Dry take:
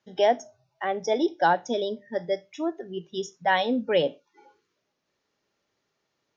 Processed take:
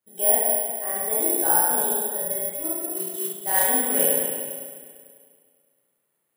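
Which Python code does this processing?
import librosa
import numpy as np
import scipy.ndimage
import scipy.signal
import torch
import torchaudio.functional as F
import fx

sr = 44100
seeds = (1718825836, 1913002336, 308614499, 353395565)

y = fx.rev_spring(x, sr, rt60_s=2.0, pass_ms=(34, 50), chirp_ms=70, drr_db=-9.0)
y = fx.mod_noise(y, sr, seeds[0], snr_db=11, at=(2.96, 3.69))
y = (np.kron(scipy.signal.resample_poly(y, 1, 4), np.eye(4)[0]) * 4)[:len(y)]
y = F.gain(torch.from_numpy(y), -12.5).numpy()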